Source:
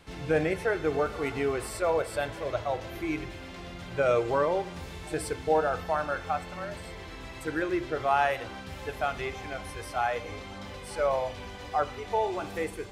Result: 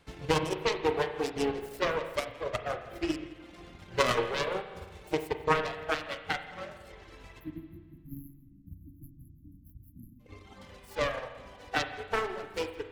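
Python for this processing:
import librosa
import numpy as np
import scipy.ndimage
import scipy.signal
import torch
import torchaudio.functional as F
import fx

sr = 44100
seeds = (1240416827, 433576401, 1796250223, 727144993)

y = fx.self_delay(x, sr, depth_ms=0.75)
y = fx.dereverb_blind(y, sr, rt60_s=0.91)
y = fx.dynamic_eq(y, sr, hz=1500.0, q=0.75, threshold_db=-40.0, ratio=4.0, max_db=-5)
y = fx.transient(y, sr, attack_db=5, sustain_db=-10)
y = fx.spec_erase(y, sr, start_s=7.4, length_s=2.8, low_hz=330.0, high_hz=11000.0)
y = y + 10.0 ** (-19.5 / 20.0) * np.pad(y, (int(165 * sr / 1000.0), 0))[:len(y)]
y = fx.rev_spring(y, sr, rt60_s=1.7, pass_ms=(32, 43), chirp_ms=60, drr_db=3.5)
y = fx.upward_expand(y, sr, threshold_db=-40.0, expansion=1.5)
y = F.gain(torch.from_numpy(y), 1.5).numpy()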